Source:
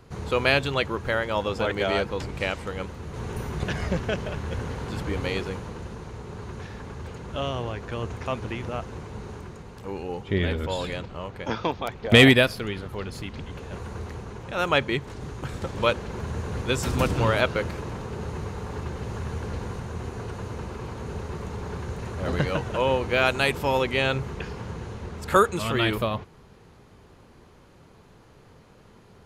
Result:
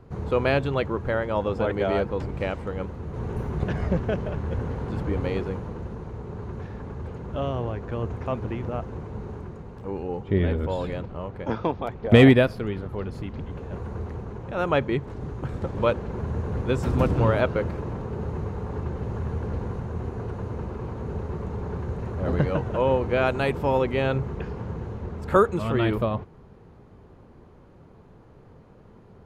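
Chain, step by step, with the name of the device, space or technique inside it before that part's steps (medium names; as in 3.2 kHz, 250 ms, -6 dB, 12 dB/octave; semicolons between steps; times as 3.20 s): through cloth (treble shelf 1.9 kHz -17.5 dB); trim +3 dB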